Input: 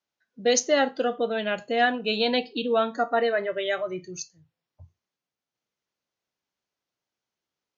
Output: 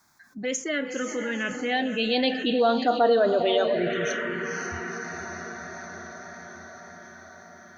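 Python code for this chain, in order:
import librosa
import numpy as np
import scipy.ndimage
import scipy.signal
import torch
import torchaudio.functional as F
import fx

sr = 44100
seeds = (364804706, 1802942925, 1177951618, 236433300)

p1 = fx.doppler_pass(x, sr, speed_mps=16, closest_m=7.7, pass_at_s=3.14)
p2 = p1 + fx.echo_diffused(p1, sr, ms=497, feedback_pct=50, wet_db=-10, dry=0)
p3 = fx.env_phaser(p2, sr, low_hz=500.0, high_hz=2200.0, full_db=-22.5)
p4 = fx.env_flatten(p3, sr, amount_pct=50)
y = F.gain(torch.from_numpy(p4), 4.0).numpy()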